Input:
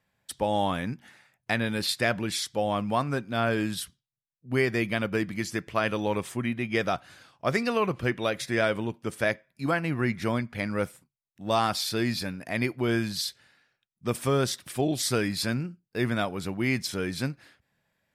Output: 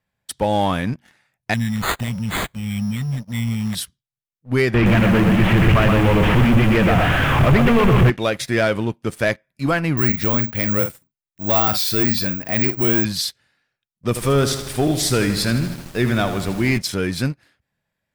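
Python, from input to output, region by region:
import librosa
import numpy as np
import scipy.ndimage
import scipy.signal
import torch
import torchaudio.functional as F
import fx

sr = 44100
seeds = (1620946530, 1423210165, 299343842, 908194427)

y = fx.chain(x, sr, fx.brickwall_bandstop(low_hz=250.0, high_hz=2800.0),
    fx.resample_bad(factor=8, down='none', up='hold'), at=(1.54, 3.75))
y = fx.chain(y, sr, fx.delta_mod(bps=16000, step_db=-21.5),
    fx.low_shelf(hz=190.0, db=10.0),
    fx.echo_crushed(ms=122, feedback_pct=35, bits=7, wet_db=-4), at=(4.74, 8.1))
y = fx.chain(y, sr, fx.resample_bad(factor=2, down='filtered', up='zero_stuff'),
    fx.doubler(ms=47.0, db=-11.5), at=(9.97, 13.05))
y = fx.echo_feedback(y, sr, ms=79, feedback_pct=60, wet_db=-11, at=(14.15, 16.77), fade=0.02)
y = fx.dmg_noise_colour(y, sr, seeds[0], colour='pink', level_db=-47.0, at=(14.15, 16.77), fade=0.02)
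y = fx.leveller(y, sr, passes=2)
y = fx.low_shelf(y, sr, hz=100.0, db=6.5)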